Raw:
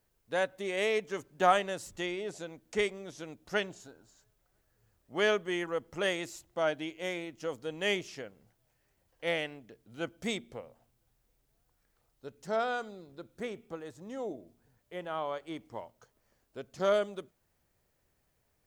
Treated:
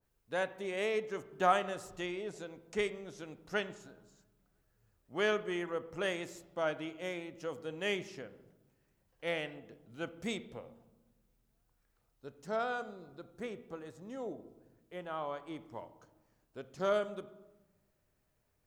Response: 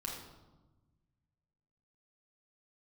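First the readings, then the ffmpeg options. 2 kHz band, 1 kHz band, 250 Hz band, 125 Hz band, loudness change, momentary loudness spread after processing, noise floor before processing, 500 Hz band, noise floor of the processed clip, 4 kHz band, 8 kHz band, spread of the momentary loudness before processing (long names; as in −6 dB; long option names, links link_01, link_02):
−4.0 dB, −3.0 dB, −2.5 dB, −2.0 dB, −3.5 dB, 18 LU, −76 dBFS, −3.5 dB, −77 dBFS, −5.5 dB, −6.0 dB, 19 LU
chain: -filter_complex "[0:a]asplit=2[link_01][link_02];[1:a]atrim=start_sample=2205,lowpass=3300[link_03];[link_02][link_03]afir=irnorm=-1:irlink=0,volume=-9.5dB[link_04];[link_01][link_04]amix=inputs=2:normalize=0,adynamicequalizer=threshold=0.00562:dfrequency=1800:dqfactor=0.7:tfrequency=1800:tqfactor=0.7:attack=5:release=100:ratio=0.375:range=1.5:mode=cutabove:tftype=highshelf,volume=-4.5dB"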